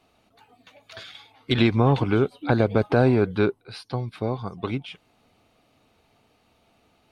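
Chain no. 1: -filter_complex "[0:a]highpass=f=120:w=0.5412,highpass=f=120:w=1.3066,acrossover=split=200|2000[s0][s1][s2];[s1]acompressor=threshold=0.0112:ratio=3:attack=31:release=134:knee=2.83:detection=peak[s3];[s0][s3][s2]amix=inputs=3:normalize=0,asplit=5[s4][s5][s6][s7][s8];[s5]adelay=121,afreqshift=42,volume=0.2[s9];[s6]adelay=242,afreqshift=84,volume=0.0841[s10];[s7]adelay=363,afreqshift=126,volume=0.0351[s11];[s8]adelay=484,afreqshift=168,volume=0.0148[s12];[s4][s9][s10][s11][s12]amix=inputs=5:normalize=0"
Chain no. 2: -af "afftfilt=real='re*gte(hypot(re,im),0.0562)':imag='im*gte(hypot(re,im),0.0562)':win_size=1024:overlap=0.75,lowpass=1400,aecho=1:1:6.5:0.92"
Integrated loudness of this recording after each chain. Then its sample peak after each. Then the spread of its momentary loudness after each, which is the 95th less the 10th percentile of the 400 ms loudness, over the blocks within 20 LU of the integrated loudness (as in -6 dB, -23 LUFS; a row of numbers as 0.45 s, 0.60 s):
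-29.5 LUFS, -21.5 LUFS; -11.0 dBFS, -5.0 dBFS; 16 LU, 12 LU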